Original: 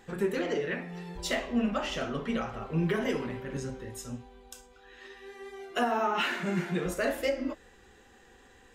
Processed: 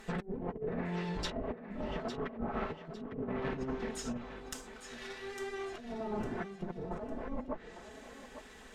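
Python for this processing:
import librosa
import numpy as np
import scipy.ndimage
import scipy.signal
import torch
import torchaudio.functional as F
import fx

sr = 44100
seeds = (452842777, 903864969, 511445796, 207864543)

y = fx.lower_of_two(x, sr, delay_ms=4.6)
y = fx.env_lowpass_down(y, sr, base_hz=390.0, full_db=-28.0)
y = fx.over_compress(y, sr, threshold_db=-39.0, ratio=-0.5)
y = fx.echo_thinned(y, sr, ms=854, feedback_pct=31, hz=340.0, wet_db=-9.5)
y = y * librosa.db_to_amplitude(1.0)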